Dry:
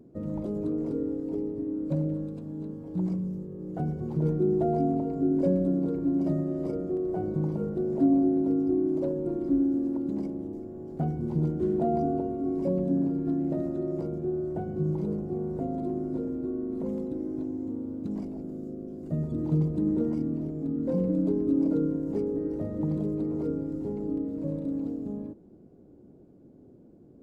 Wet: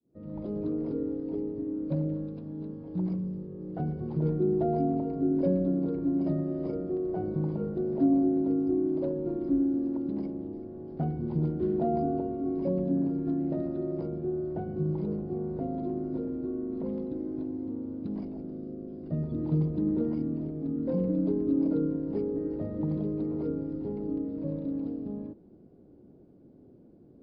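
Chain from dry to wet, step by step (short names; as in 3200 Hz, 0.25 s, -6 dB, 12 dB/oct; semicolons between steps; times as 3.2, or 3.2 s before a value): opening faded in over 0.55 s; downsampling 11025 Hz; gain -1.5 dB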